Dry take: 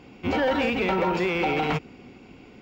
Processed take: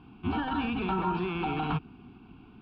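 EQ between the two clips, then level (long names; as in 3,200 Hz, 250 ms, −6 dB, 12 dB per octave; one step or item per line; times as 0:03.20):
high-frequency loss of the air 370 metres
phaser with its sweep stopped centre 2,000 Hz, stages 6
0.0 dB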